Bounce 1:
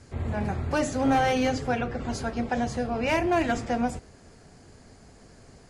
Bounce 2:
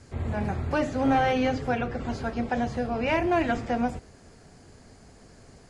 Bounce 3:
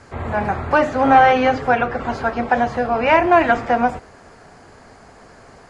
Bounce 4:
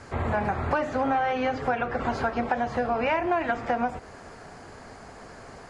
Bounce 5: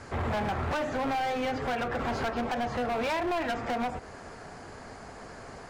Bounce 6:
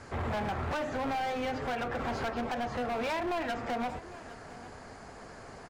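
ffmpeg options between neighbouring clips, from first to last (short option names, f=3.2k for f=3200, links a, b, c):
-filter_complex "[0:a]acrossover=split=4100[a][b];[b]acompressor=threshold=-55dB:ratio=4:attack=1:release=60[c];[a][c]amix=inputs=2:normalize=0"
-af "equalizer=f=1.1k:w=0.47:g=14,volume=1dB"
-af "acompressor=threshold=-23dB:ratio=6"
-af "volume=27dB,asoftclip=hard,volume=-27dB"
-af "aecho=1:1:805:0.133,volume=-3dB"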